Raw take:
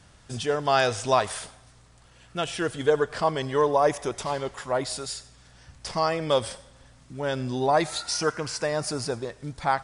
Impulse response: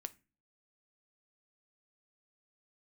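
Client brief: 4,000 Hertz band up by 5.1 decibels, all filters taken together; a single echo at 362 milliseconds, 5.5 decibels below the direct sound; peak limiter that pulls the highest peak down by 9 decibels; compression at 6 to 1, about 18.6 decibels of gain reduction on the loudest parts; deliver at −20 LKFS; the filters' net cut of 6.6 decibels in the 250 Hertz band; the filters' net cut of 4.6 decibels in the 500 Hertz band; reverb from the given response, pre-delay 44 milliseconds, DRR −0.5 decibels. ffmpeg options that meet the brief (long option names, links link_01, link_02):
-filter_complex "[0:a]equalizer=frequency=250:width_type=o:gain=-8,equalizer=frequency=500:width_type=o:gain=-4,equalizer=frequency=4000:width_type=o:gain=6.5,acompressor=threshold=-38dB:ratio=6,alimiter=level_in=8.5dB:limit=-24dB:level=0:latency=1,volume=-8.5dB,aecho=1:1:362:0.531,asplit=2[link_01][link_02];[1:a]atrim=start_sample=2205,adelay=44[link_03];[link_02][link_03]afir=irnorm=-1:irlink=0,volume=4dB[link_04];[link_01][link_04]amix=inputs=2:normalize=0,volume=19dB"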